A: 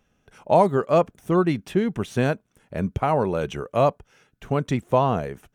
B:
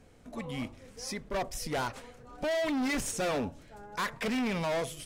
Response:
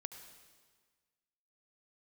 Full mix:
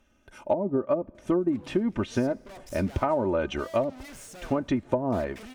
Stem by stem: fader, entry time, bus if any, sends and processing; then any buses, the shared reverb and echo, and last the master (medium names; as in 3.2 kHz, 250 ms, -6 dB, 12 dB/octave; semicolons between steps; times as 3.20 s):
-0.5 dB, 0.00 s, send -20 dB, low-pass that closes with the level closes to 330 Hz, closed at -14 dBFS; comb 3.3 ms, depth 73%
-8.5 dB, 1.15 s, send -5 dB, hard clipper -38 dBFS, distortion -8 dB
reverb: on, RT60 1.5 s, pre-delay 67 ms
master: compression 6:1, threshold -21 dBFS, peak gain reduction 9 dB